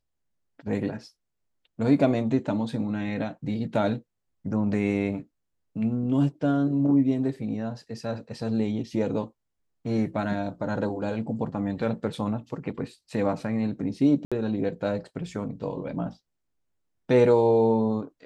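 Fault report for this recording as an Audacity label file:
14.250000	14.320000	dropout 66 ms

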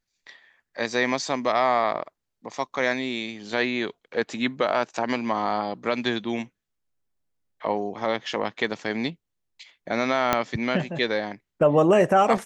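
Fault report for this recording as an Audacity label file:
10.330000	10.330000	pop -5 dBFS

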